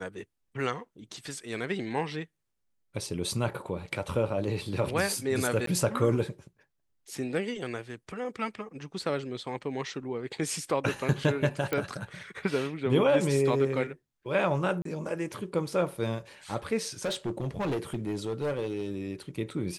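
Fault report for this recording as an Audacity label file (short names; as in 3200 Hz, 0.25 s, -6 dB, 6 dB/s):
5.660000	5.670000	gap 13 ms
11.730000	11.730000	pop -15 dBFS
14.820000	14.850000	gap 33 ms
17.050000	18.900000	clipped -26.5 dBFS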